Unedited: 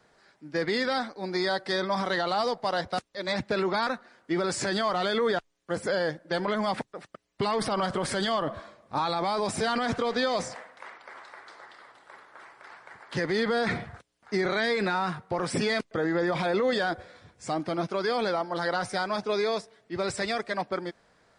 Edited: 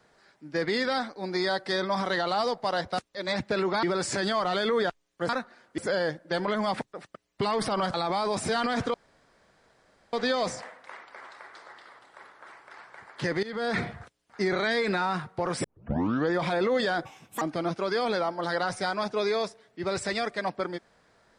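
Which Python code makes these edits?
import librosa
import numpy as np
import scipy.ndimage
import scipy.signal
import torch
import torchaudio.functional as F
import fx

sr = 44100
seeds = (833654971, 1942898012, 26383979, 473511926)

y = fx.edit(x, sr, fx.move(start_s=3.83, length_s=0.49, to_s=5.78),
    fx.cut(start_s=7.94, length_s=1.12),
    fx.insert_room_tone(at_s=10.06, length_s=1.19),
    fx.fade_in_from(start_s=13.36, length_s=0.33, floor_db=-18.5),
    fx.tape_start(start_s=15.57, length_s=0.66),
    fx.speed_span(start_s=16.98, length_s=0.56, speed=1.54), tone=tone)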